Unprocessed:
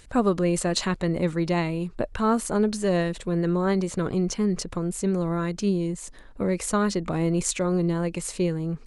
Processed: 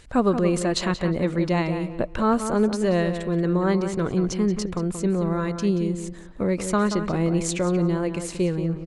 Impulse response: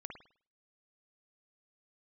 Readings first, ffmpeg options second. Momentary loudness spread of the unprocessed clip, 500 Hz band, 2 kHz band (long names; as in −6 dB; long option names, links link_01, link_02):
6 LU, +2.0 dB, +1.5 dB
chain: -filter_complex "[0:a]highshelf=frequency=8500:gain=-9,asplit=2[link_01][link_02];[link_02]adelay=180,lowpass=frequency=3000:poles=1,volume=-8.5dB,asplit=2[link_03][link_04];[link_04]adelay=180,lowpass=frequency=3000:poles=1,volume=0.26,asplit=2[link_05][link_06];[link_06]adelay=180,lowpass=frequency=3000:poles=1,volume=0.26[link_07];[link_03][link_05][link_07]amix=inputs=3:normalize=0[link_08];[link_01][link_08]amix=inputs=2:normalize=0,volume=1.5dB"